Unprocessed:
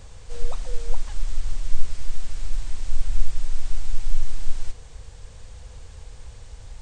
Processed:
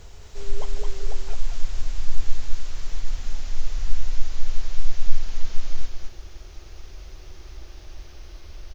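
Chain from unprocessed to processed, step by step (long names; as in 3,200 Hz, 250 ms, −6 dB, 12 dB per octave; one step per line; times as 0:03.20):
gliding playback speed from 85% → 71%
bit reduction 11 bits
single-tap delay 215 ms −4 dB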